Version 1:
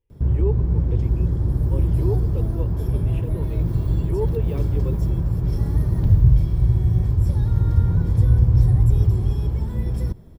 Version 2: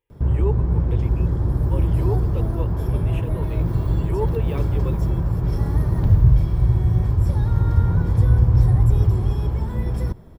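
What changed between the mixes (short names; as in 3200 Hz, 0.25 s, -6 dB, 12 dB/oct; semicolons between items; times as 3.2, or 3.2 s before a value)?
speech: add tilt +2.5 dB/oct; master: add bell 1100 Hz +7.5 dB 2.3 oct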